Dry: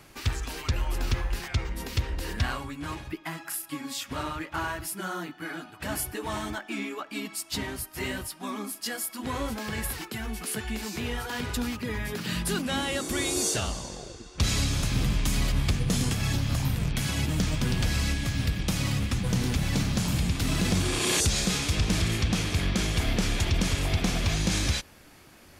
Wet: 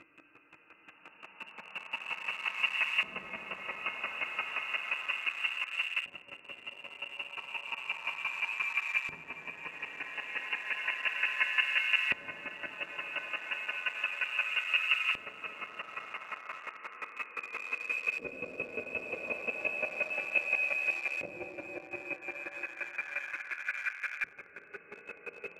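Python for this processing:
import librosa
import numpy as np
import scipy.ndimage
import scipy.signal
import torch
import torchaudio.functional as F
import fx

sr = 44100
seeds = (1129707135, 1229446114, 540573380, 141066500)

p1 = fx.delta_mod(x, sr, bps=64000, step_db=-47.0)
p2 = fx.low_shelf(p1, sr, hz=450.0, db=9.0)
p3 = fx.paulstretch(p2, sr, seeds[0], factor=18.0, window_s=0.25, from_s=5.69)
p4 = p3 + fx.echo_single(p3, sr, ms=616, db=-11.0, dry=0)
p5 = fx.freq_invert(p4, sr, carrier_hz=2800)
p6 = fx.chopper(p5, sr, hz=5.7, depth_pct=65, duty_pct=15)
p7 = fx.quant_dither(p6, sr, seeds[1], bits=6, dither='none')
p8 = p6 + (p7 * 10.0 ** (-5.5 / 20.0))
y = fx.filter_lfo_bandpass(p8, sr, shape='saw_up', hz=0.33, low_hz=300.0, high_hz=1900.0, q=0.75)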